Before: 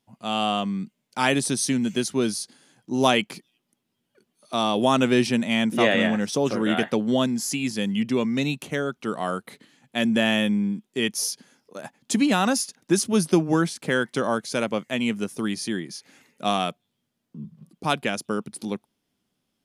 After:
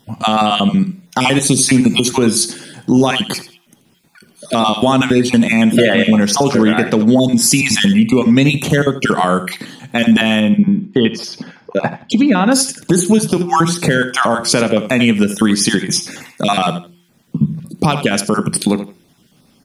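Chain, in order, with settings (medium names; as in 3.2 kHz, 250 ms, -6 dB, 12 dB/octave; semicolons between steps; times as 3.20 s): random holes in the spectrogram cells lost 25%; peaking EQ 120 Hz +4 dB 1.7 oct; de-hum 174 Hz, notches 2; compression 16:1, threshold -30 dBFS, peak gain reduction 18 dB; 10.40–12.52 s: distance through air 270 m; feedback delay 83 ms, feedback 22%, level -14 dB; reverberation, pre-delay 3 ms, DRR 14 dB; loudness maximiser +24 dB; trim -1 dB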